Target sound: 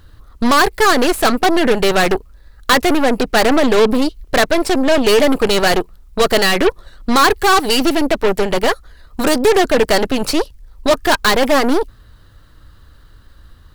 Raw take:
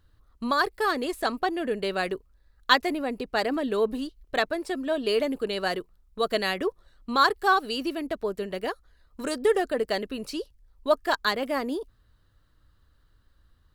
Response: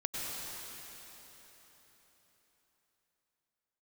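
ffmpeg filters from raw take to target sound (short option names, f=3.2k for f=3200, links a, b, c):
-af "apsyclip=18.5dB,aeval=exprs='1.06*(cos(1*acos(clip(val(0)/1.06,-1,1)))-cos(1*PI/2))+0.237*(cos(6*acos(clip(val(0)/1.06,-1,1)))-cos(6*PI/2))':c=same,asoftclip=type=tanh:threshold=-6.5dB"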